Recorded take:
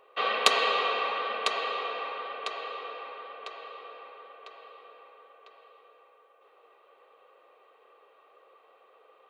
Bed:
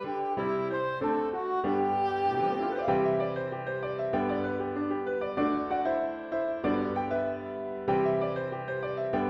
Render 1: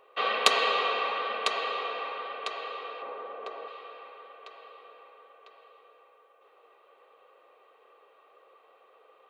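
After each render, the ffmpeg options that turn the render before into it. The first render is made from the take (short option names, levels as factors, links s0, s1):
-filter_complex "[0:a]asettb=1/sr,asplit=3[s0][s1][s2];[s0]atrim=end=3.024[s3];[s1]atrim=start=3.02:end=3.68,asetpts=PTS-STARTPTS,afade=t=in:d=0.004:c=qsin,afade=t=out:st=0.656:d=0.004:c=qsin,tiltshelf=f=1400:g=8[s4];[s2]atrim=start=3.676[s5];[s3][s4]acrossfade=d=0.004:c1=hsin:c2=qsin[s6];[s6][s5]acrossfade=d=0.004:c1=qsin:c2=hsin"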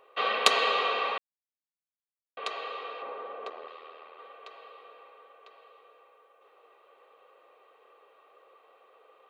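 -filter_complex "[0:a]asettb=1/sr,asplit=3[s0][s1][s2];[s0]atrim=end=3.494[s3];[s1]atrim=start=3.49:end=4.19,asetpts=PTS-STARTPTS,afade=t=in:d=0.004:c=qsin,afade=t=out:st=0.696:d=0.004:c=qsin,aeval=exprs='val(0)*sin(2*PI*40*n/s)':c=same[s4];[s2]atrim=start=4.186[s5];[s3][s4]acrossfade=d=0.004:c1=hsin:c2=qsin[s6];[s6][s5]acrossfade=d=0.004:c1=qsin:c2=hsin,asplit=3[s7][s8][s9];[s7]atrim=end=1.18,asetpts=PTS-STARTPTS,afade=t=out:st=1.176:d=0.004:c=hsin[s10];[s8]atrim=start=1.18:end=2.37,asetpts=PTS-STARTPTS,volume=0[s11];[s9]atrim=start=2.37,asetpts=PTS-STARTPTS,afade=t=in:d=0.004:c=hsin[s12];[s10][s11][s12]concat=n=3:v=0:a=1"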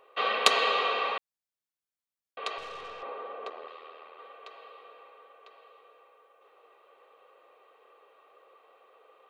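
-filter_complex "[0:a]asettb=1/sr,asplit=3[s0][s1][s2];[s0]atrim=end=2.584[s3];[s1]atrim=start=2.58:end=3.03,asetpts=PTS-STARTPTS,afade=t=in:d=0.004:c=qsin,afade=t=out:st=0.446:d=0.004:c=qsin,aeval=exprs='(tanh(70.8*val(0)+0.3)-tanh(0.3))/70.8':c=same[s4];[s2]atrim=start=3.026[s5];[s3][s4]acrossfade=d=0.004:c1=hsin:c2=qsin[s6];[s6][s5]acrossfade=d=0.004:c1=qsin:c2=hsin"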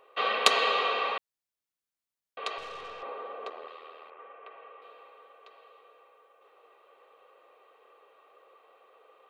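-filter_complex "[0:a]asettb=1/sr,asplit=3[s0][s1][s2];[s0]atrim=end=4.104[s3];[s1]atrim=start=4.1:end=4.82,asetpts=PTS-STARTPTS,afade=t=in:d=0.004:c=qsin,afade=t=out:st=0.716:d=0.004:c=qsin,lowpass=f=2600:w=0.5412,lowpass=f=2600:w=1.3066[s4];[s2]atrim=start=4.816[s5];[s3][s4]acrossfade=d=0.004:c1=hsin:c2=qsin[s6];[s6][s5]acrossfade=d=0.004:c1=qsin:c2=hsin"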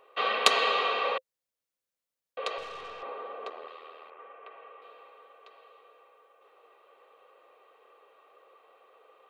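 -filter_complex "[0:a]asettb=1/sr,asplit=3[s0][s1][s2];[s0]atrim=end=1.044[s3];[s1]atrim=start=1.04:end=2.63,asetpts=PTS-STARTPTS,afade=t=in:d=0.004:c=qsin,afade=t=out:st=1.586:d=0.004:c=qsin,equalizer=f=520:t=o:w=0.23:g=12[s4];[s2]atrim=start=2.626[s5];[s3][s4]acrossfade=d=0.004:c1=hsin:c2=qsin[s6];[s6][s5]acrossfade=d=0.004:c1=qsin:c2=hsin"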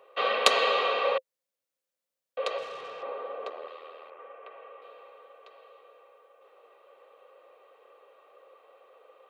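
-af "highpass=130,equalizer=f=550:w=4.7:g=8"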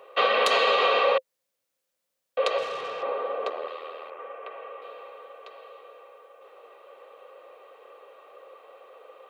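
-af "acontrast=88,alimiter=limit=0.237:level=0:latency=1:release=99"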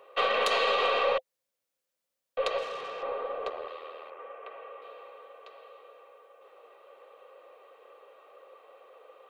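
-af "aeval=exprs='0.237*(cos(1*acos(clip(val(0)/0.237,-1,1)))-cos(1*PI/2))+0.00668*(cos(4*acos(clip(val(0)/0.237,-1,1)))-cos(4*PI/2))':c=same,flanger=delay=0.6:depth=6:regen=-87:speed=0.83:shape=triangular"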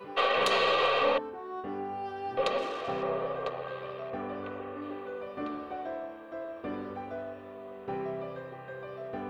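-filter_complex "[1:a]volume=0.355[s0];[0:a][s0]amix=inputs=2:normalize=0"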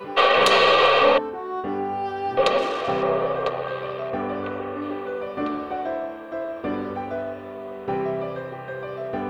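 -af "volume=2.99"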